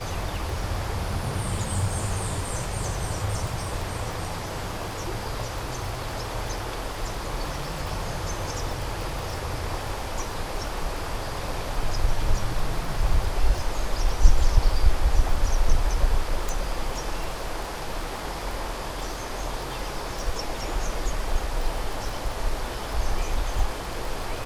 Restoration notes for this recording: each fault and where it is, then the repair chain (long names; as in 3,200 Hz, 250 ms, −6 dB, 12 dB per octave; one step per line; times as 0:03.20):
surface crackle 27 per second −30 dBFS
0:16.49: click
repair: click removal